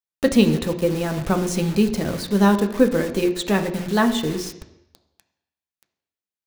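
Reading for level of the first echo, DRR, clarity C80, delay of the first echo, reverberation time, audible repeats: no echo audible, 5.0 dB, 13.5 dB, no echo audible, 0.80 s, no echo audible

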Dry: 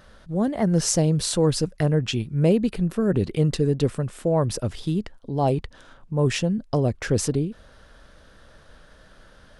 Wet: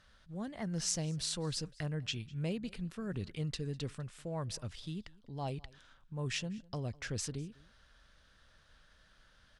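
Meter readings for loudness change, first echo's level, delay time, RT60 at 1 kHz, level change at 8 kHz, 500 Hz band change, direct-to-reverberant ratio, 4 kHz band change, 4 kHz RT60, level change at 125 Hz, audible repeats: −16.0 dB, −23.5 dB, 201 ms, no reverb audible, −11.0 dB, −20.5 dB, no reverb audible, −9.0 dB, no reverb audible, −16.0 dB, 1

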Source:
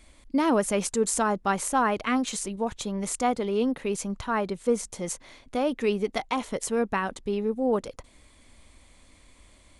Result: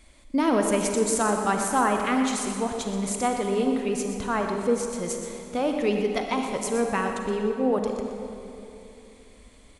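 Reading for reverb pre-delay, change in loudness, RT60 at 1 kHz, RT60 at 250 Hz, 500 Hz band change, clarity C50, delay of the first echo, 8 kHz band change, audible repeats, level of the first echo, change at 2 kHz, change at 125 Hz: 36 ms, +2.0 dB, 2.7 s, 3.5 s, +2.0 dB, 3.5 dB, 122 ms, +1.5 dB, 1, −11.0 dB, +2.0 dB, +2.0 dB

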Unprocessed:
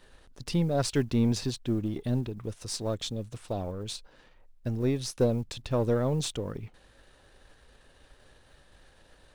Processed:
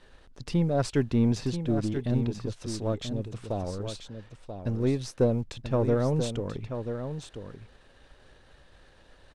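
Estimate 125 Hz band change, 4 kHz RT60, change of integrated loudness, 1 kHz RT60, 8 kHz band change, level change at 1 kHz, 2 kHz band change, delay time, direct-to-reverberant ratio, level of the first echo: +2.0 dB, no reverb audible, +1.0 dB, no reverb audible, −5.0 dB, +1.5 dB, +0.5 dB, 985 ms, no reverb audible, −8.5 dB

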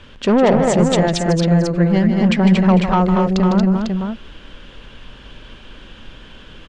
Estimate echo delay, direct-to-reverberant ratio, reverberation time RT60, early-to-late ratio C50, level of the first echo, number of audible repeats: 153 ms, no reverb audible, no reverb audible, no reverb audible, −9.0 dB, 4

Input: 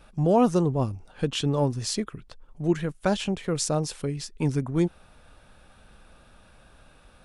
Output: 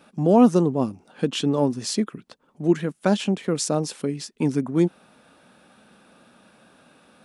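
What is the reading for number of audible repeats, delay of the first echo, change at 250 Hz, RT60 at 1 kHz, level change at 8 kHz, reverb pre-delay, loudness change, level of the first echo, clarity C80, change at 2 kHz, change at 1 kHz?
no echo audible, no echo audible, +5.5 dB, no reverb audible, +1.5 dB, no reverb audible, +3.5 dB, no echo audible, no reverb audible, +1.5 dB, +2.0 dB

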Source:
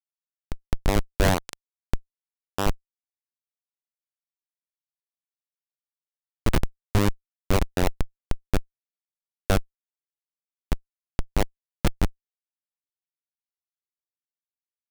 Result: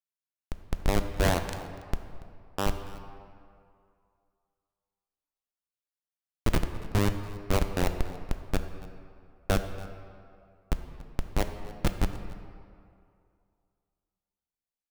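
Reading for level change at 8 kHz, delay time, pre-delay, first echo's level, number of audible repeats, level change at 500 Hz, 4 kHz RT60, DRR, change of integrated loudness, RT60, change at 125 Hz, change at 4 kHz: −3.5 dB, 284 ms, 7 ms, −19.5 dB, 1, −3.0 dB, 1.3 s, 7.0 dB, −4.0 dB, 2.4 s, −3.5 dB, −3.5 dB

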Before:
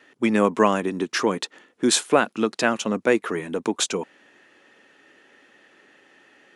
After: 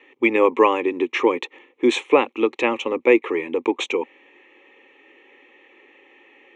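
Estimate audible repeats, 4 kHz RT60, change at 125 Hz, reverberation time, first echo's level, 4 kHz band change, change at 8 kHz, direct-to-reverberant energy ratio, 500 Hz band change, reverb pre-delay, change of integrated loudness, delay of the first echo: no echo audible, no reverb audible, below −10 dB, no reverb audible, no echo audible, −3.0 dB, −14.5 dB, no reverb audible, +4.5 dB, no reverb audible, +2.5 dB, no echo audible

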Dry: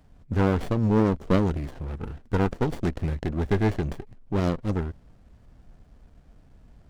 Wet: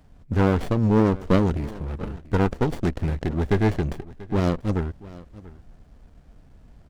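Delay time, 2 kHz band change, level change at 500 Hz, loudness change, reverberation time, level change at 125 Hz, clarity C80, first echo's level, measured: 687 ms, +2.5 dB, +2.5 dB, +2.5 dB, no reverb audible, +2.5 dB, no reverb audible, −19.5 dB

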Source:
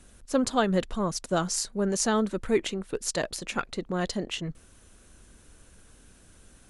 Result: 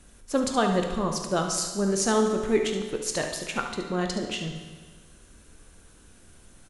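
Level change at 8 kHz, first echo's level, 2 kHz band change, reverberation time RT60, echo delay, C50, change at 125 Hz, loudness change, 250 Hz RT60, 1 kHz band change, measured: +1.5 dB, −9.5 dB, +1.5 dB, 1.5 s, 72 ms, 4.5 dB, +1.0 dB, +2.0 dB, 1.5 s, +2.5 dB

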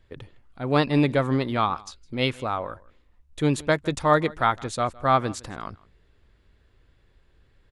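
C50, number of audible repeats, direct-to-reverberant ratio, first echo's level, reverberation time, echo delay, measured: no reverb audible, 1, no reverb audible, −23.0 dB, no reverb audible, 160 ms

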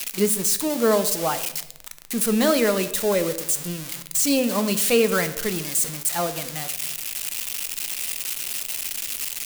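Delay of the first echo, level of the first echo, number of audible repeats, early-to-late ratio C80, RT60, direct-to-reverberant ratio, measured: no echo audible, no echo audible, no echo audible, 15.5 dB, 0.85 s, 10.0 dB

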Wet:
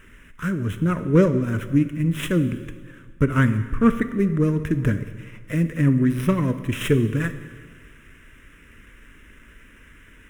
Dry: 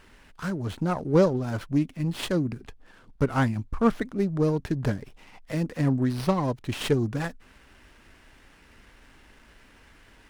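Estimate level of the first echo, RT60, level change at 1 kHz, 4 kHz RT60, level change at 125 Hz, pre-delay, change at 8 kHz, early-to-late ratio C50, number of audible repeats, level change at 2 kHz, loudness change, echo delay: no echo audible, 1.6 s, −0.5 dB, 1.5 s, +6.5 dB, 6 ms, +2.5 dB, 11.5 dB, no echo audible, +6.0 dB, +5.0 dB, no echo audible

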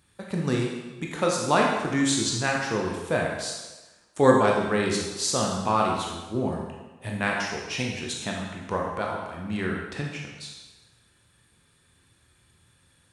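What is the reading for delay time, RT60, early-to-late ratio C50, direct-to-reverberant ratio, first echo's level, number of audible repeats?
no echo audible, 1.2 s, 2.0 dB, −1.5 dB, no echo audible, no echo audible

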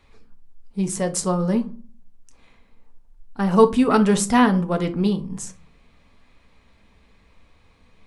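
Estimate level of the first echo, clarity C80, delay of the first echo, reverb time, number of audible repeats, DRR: no echo audible, 22.0 dB, no echo audible, 0.40 s, no echo audible, 6.0 dB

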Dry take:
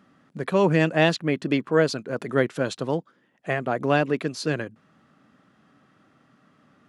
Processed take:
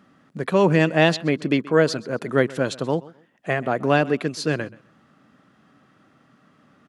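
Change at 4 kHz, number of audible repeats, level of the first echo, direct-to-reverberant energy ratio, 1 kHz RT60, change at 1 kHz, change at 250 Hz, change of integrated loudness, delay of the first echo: +2.5 dB, 2, −21.0 dB, no reverb audible, no reverb audible, +2.5 dB, +2.5 dB, +2.5 dB, 129 ms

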